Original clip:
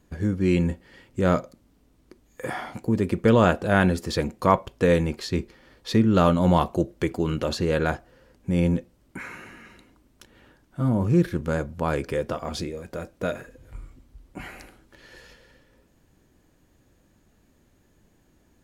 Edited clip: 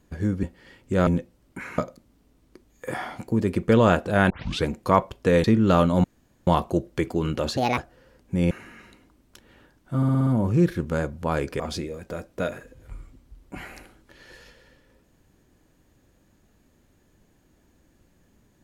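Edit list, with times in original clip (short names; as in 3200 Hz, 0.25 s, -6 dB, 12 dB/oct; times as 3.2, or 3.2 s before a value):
0.43–0.7 cut
3.86 tape start 0.34 s
5–5.91 cut
6.51 insert room tone 0.43 s
7.61–7.93 speed 154%
8.66–9.37 move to 1.34
10.83 stutter 0.06 s, 6 plays
12.16–12.43 cut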